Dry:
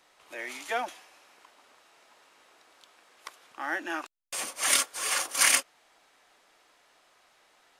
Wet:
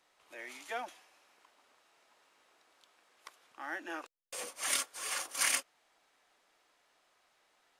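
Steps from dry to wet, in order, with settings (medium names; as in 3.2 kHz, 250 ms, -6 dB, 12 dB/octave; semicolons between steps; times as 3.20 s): 3.88–4.49 s: peaking EQ 490 Hz +14 dB 0.3 oct; trim -8.5 dB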